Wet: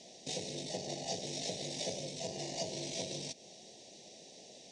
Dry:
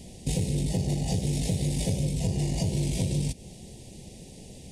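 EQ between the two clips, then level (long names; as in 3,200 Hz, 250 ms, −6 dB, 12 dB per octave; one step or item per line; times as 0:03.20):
loudspeaker in its box 370–7,100 Hz, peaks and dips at 650 Hz +8 dB, 1,800 Hz +3 dB, 3,900 Hz +7 dB, 5,800 Hz +9 dB
−6.0 dB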